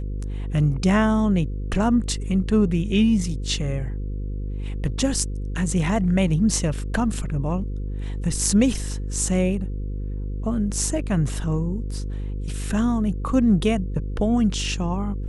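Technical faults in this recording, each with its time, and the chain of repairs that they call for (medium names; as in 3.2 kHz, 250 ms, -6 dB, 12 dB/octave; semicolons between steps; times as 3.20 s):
buzz 50 Hz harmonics 10 -28 dBFS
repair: de-hum 50 Hz, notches 10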